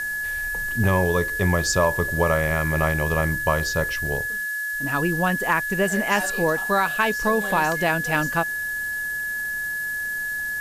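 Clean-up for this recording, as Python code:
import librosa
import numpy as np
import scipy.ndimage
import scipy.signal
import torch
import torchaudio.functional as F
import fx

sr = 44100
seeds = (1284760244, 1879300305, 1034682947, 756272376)

y = fx.fix_declip(x, sr, threshold_db=-8.5)
y = fx.notch(y, sr, hz=1700.0, q=30.0)
y = fx.noise_reduce(y, sr, print_start_s=4.3, print_end_s=4.8, reduce_db=30.0)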